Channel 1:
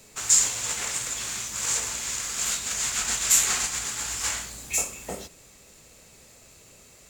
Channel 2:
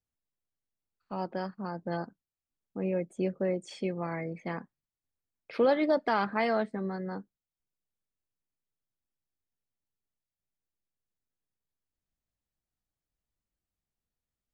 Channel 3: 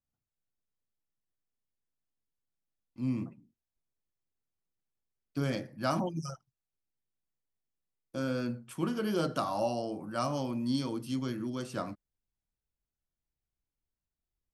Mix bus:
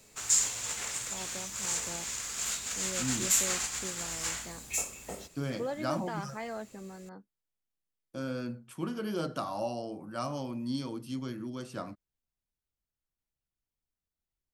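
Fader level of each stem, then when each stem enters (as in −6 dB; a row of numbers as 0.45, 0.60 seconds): −6.5, −11.0, −3.0 decibels; 0.00, 0.00, 0.00 seconds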